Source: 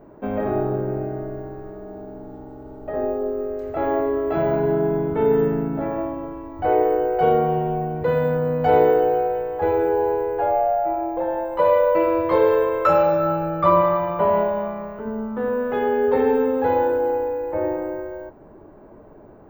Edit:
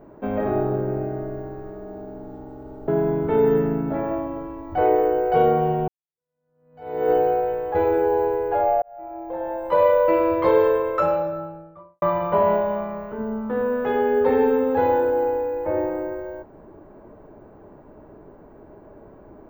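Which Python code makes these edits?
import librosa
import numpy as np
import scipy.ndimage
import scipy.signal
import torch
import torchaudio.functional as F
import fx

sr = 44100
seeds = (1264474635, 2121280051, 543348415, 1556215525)

y = fx.studio_fade_out(x, sr, start_s=12.32, length_s=1.57)
y = fx.edit(y, sr, fx.cut(start_s=2.88, length_s=1.87),
    fx.fade_in_span(start_s=7.75, length_s=1.23, curve='exp'),
    fx.fade_in_span(start_s=10.69, length_s=1.01), tone=tone)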